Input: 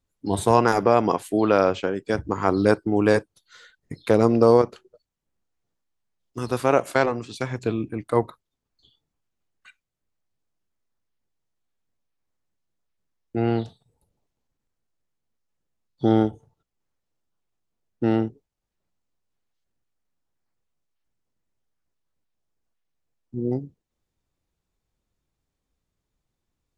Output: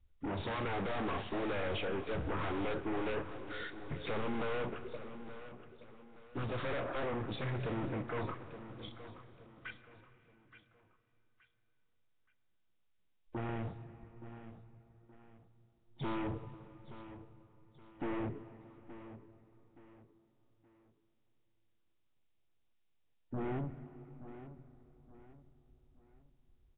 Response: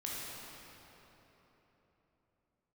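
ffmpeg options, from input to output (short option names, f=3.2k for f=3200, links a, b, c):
-filter_complex "[0:a]aeval=exprs='0.188*(abs(mod(val(0)/0.188+3,4)-2)-1)':c=same,asettb=1/sr,asplit=3[a][b][c];[a]atrim=end=6.844[d];[b]atrim=start=6.84:end=7.32,asetpts=PTS-STARTPTS,afade=t=in:d=0.004:c=qsin,afade=t=out:st=0.476:d=0.004:c=qsin,lowpass=f=1.6k:w=0.5412,lowpass=f=1.6k:w=1.3066[e];[c]atrim=start=7.316[f];[d][e]acrossfade=d=0.004:c1=hsin:c2=qsin[g];[g][f]acrossfade=d=0.004:c1=qsin:c2=hsin,aeval=exprs='(tanh(141*val(0)+0.25)-tanh(0.25))/141':c=same,alimiter=level_in=24dB:limit=-24dB:level=0:latency=1:release=387,volume=-24dB,afwtdn=0.000631,aecho=1:1:873|1746|2619:0.211|0.074|0.0259,asplit=2[h][i];[1:a]atrim=start_sample=2205,lowshelf=f=60:g=4.5[j];[i][j]afir=irnorm=-1:irlink=0,volume=-12.5dB[k];[h][k]amix=inputs=2:normalize=0,volume=13dB" -ar 8000 -c:a nellymoser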